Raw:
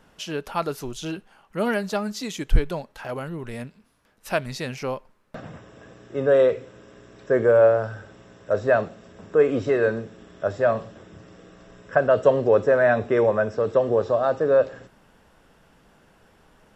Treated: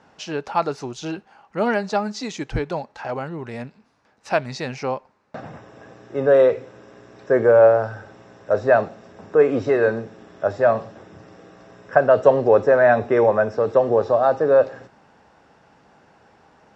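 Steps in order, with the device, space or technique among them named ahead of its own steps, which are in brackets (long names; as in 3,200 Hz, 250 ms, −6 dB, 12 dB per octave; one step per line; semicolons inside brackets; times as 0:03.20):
car door speaker (loudspeaker in its box 94–6,600 Hz, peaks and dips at 180 Hz −3 dB, 810 Hz +7 dB, 3,200 Hz −6 dB)
level +2.5 dB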